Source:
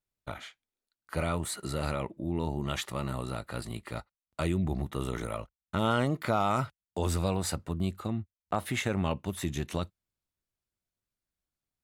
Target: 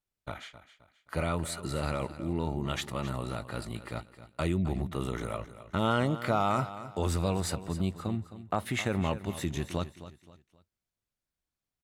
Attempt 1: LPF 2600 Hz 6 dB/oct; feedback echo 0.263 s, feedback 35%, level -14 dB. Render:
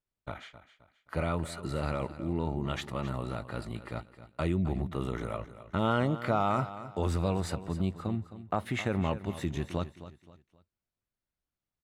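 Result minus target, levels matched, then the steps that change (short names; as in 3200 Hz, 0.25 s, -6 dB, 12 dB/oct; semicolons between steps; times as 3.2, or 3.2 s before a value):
8000 Hz band -7.5 dB
change: LPF 9400 Hz 6 dB/oct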